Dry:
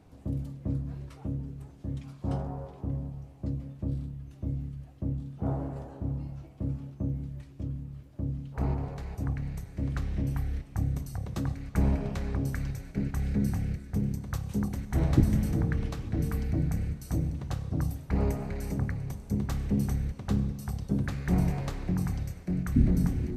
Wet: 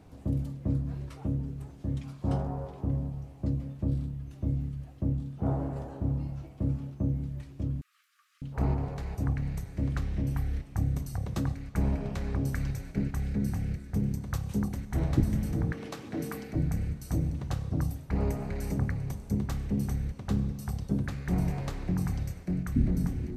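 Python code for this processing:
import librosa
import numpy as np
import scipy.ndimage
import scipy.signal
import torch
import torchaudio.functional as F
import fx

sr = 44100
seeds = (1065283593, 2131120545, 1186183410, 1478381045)

y = fx.brickwall_highpass(x, sr, low_hz=1100.0, at=(7.81, 8.42))
y = fx.highpass(y, sr, hz=270.0, slope=12, at=(15.72, 16.55))
y = fx.rider(y, sr, range_db=3, speed_s=0.5)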